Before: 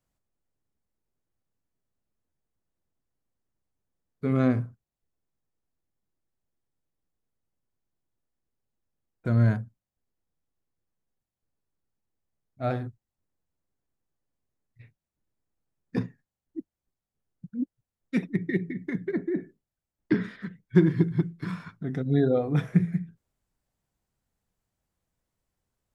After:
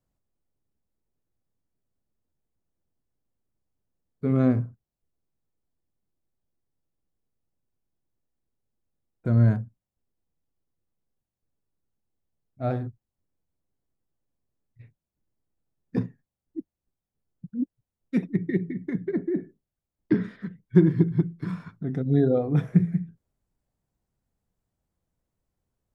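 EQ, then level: tilt shelf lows +7.5 dB, about 1.4 kHz; treble shelf 2.9 kHz +8 dB; -5.0 dB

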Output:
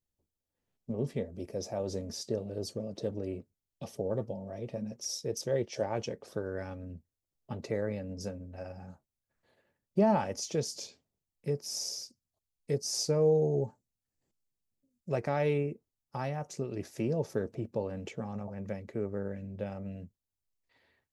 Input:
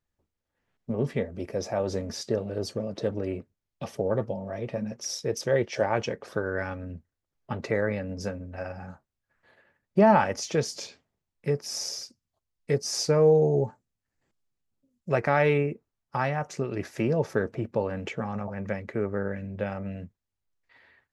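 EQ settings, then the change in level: bass shelf 420 Hz -5.5 dB; peaking EQ 1.6 kHz -14 dB 2.2 oct; 0.0 dB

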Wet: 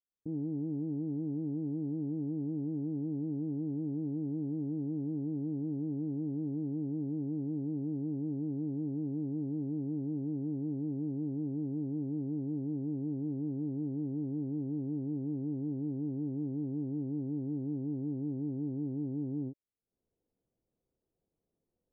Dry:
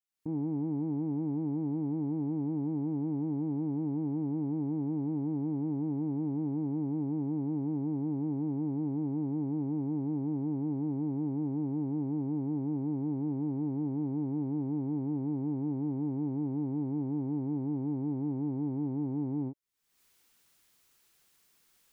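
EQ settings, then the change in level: Chebyshev low-pass 560 Hz, order 3; -2.0 dB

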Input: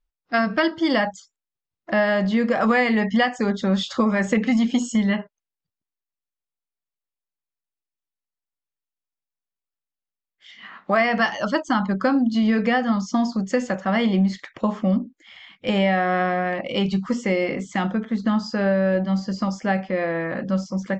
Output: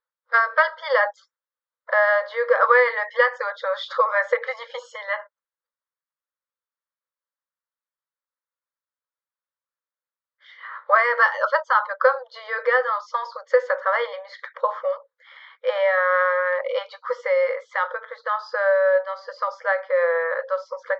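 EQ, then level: brick-wall FIR high-pass 470 Hz; low-pass 3.5 kHz 24 dB/octave; static phaser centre 720 Hz, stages 6; +8.0 dB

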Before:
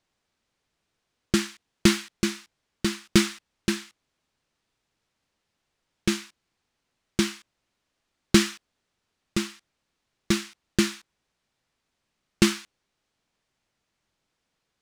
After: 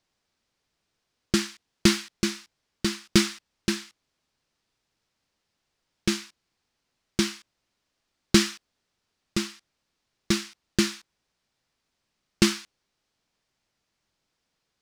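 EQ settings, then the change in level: peaking EQ 5 kHz +4 dB 0.67 oct; -1.0 dB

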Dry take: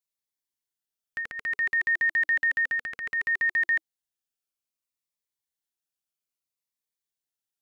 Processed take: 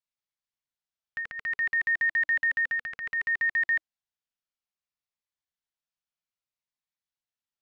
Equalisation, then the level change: distance through air 110 m; peaking EQ 360 Hz -12.5 dB 0.78 oct; 0.0 dB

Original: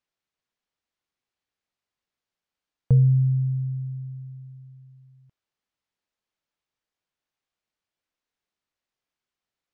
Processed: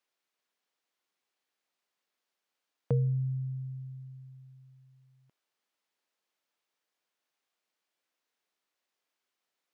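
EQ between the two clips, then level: high-pass 290 Hz 12 dB/octave; +3.0 dB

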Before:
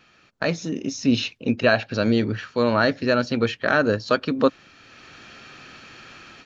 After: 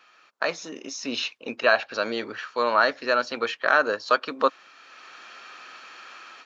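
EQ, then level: high-pass 520 Hz 12 dB/octave; peaking EQ 1.1 kHz +6.5 dB 0.79 oct; -1.5 dB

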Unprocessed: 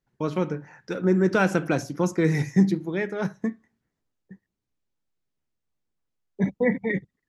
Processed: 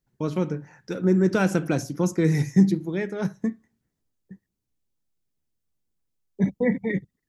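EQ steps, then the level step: bass shelf 490 Hz +9 dB; treble shelf 4.1 kHz +11.5 dB; -6.0 dB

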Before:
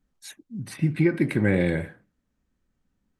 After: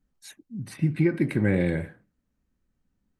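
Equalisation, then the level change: bass shelf 360 Hz +3.5 dB; band-stop 3.4 kHz, Q 28; -3.5 dB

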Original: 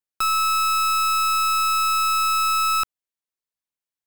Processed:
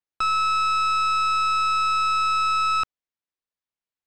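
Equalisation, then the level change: steep low-pass 10 kHz 36 dB/octave; distance through air 110 m; 0.0 dB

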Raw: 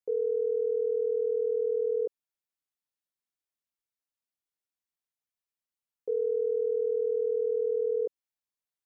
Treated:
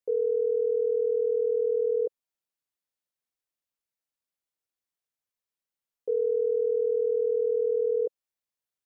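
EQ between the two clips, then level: peaking EQ 520 Hz +4 dB 0.46 oct; 0.0 dB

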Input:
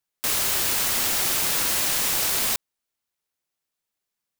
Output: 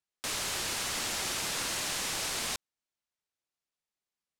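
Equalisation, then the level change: low-pass 8.3 kHz 12 dB/octave; -6.5 dB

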